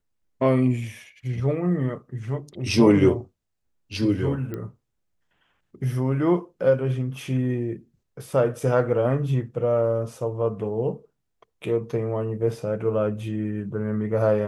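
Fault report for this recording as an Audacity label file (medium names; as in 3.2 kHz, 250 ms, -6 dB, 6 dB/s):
4.540000	4.540000	pop -20 dBFS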